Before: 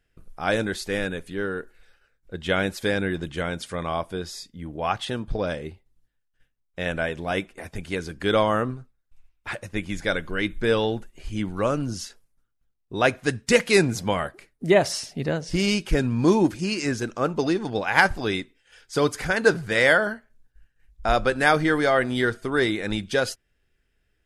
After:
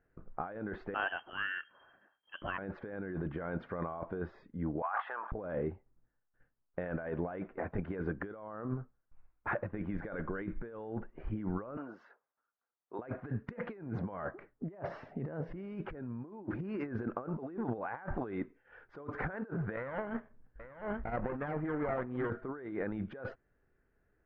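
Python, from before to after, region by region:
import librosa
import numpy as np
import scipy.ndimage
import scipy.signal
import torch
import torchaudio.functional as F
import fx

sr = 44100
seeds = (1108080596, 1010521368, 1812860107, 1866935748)

y = fx.chain(x, sr, fx.freq_invert(carrier_hz=3200),
    fx.quant_companded(bits=8), at=(0.94, 2.58))
y = fx.chain(y, sr, fx.highpass(hz=910.0, slope=24),
    fx.spacing_loss(db_at_10k=35),
    fx.sustainer(db_per_s=47.0), at=(4.82, 5.32))
y = fx.chain(y, sr, fx.highpass(hz=720.0, slope=12),
    fx.dynamic_eq(hz=2700.0, q=0.71, threshold_db=-53.0, ratio=4.0, max_db=-6), at=(11.77, 12.99))
y = fx.chain(y, sr, fx.lower_of_two(delay_ms=0.4),
    fx.over_compress(threshold_db=-28.0, ratio=-0.5),
    fx.echo_single(ms=834, db=-12.0), at=(19.76, 22.3))
y = scipy.signal.sosfilt(scipy.signal.butter(4, 1500.0, 'lowpass', fs=sr, output='sos'), y)
y = fx.low_shelf(y, sr, hz=110.0, db=-9.5)
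y = fx.over_compress(y, sr, threshold_db=-35.0, ratio=-1.0)
y = y * librosa.db_to_amplitude(-4.5)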